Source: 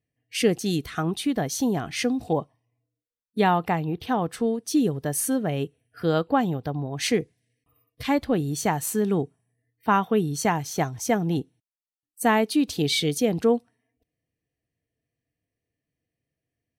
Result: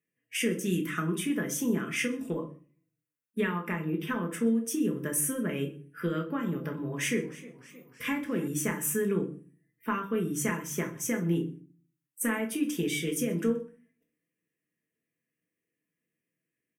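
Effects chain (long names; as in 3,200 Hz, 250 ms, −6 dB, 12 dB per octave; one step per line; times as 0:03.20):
high-pass filter 270 Hz 12 dB per octave
comb filter 5.9 ms, depth 31%
downward compressor, threshold −26 dBFS, peak gain reduction 11 dB
phaser with its sweep stopped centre 1,800 Hz, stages 4
single-tap delay 126 ms −24 dB
convolution reverb RT60 0.40 s, pre-delay 5 ms, DRR 2 dB
0:06.22–0:08.48: feedback echo with a swinging delay time 311 ms, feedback 61%, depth 93 cents, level −18.5 dB
level +1.5 dB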